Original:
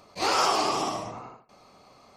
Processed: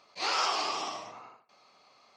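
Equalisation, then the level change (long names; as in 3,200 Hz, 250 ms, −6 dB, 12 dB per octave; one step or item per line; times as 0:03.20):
high-frequency loss of the air 180 metres
spectral tilt +4.5 dB per octave
−5.5 dB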